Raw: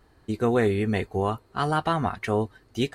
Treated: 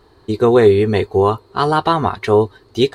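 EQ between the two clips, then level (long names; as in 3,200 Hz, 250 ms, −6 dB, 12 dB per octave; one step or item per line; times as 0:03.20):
graphic EQ with 15 bands 100 Hz +5 dB, 400 Hz +11 dB, 1,000 Hz +8 dB, 4,000 Hz +10 dB
+3.5 dB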